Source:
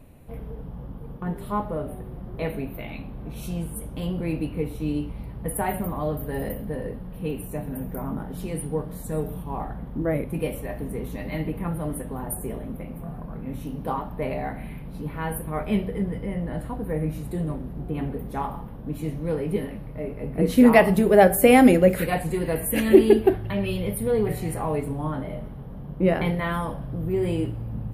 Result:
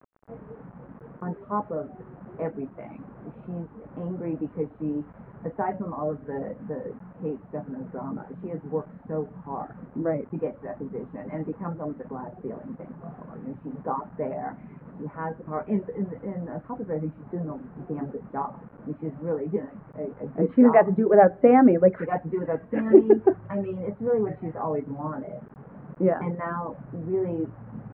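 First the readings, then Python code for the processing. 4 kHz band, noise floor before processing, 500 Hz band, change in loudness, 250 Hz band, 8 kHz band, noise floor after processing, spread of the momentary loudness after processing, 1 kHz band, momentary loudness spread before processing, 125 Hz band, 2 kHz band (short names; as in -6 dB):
under -25 dB, -38 dBFS, -1.0 dB, -1.5 dB, -2.5 dB, under -40 dB, -49 dBFS, 22 LU, -0.5 dB, 18 LU, -6.5 dB, -8.5 dB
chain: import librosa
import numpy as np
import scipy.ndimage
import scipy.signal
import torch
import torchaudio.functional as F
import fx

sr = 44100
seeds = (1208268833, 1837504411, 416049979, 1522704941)

y = fx.dereverb_blind(x, sr, rt60_s=0.64)
y = scipy.signal.sosfilt(scipy.signal.butter(2, 180.0, 'highpass', fs=sr, output='sos'), y)
y = fx.quant_dither(y, sr, seeds[0], bits=8, dither='none')
y = scipy.signal.sosfilt(scipy.signal.cheby2(4, 70, 6400.0, 'lowpass', fs=sr, output='sos'), y)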